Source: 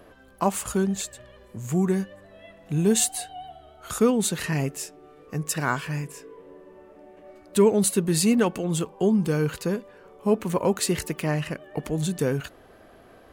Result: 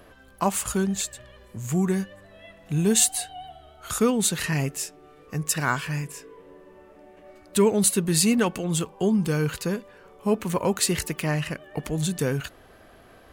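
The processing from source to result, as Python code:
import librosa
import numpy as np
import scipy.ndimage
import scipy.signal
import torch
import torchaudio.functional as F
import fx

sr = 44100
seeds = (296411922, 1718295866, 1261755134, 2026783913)

y = fx.peak_eq(x, sr, hz=400.0, db=-5.5, octaves=2.9)
y = y * 10.0 ** (3.5 / 20.0)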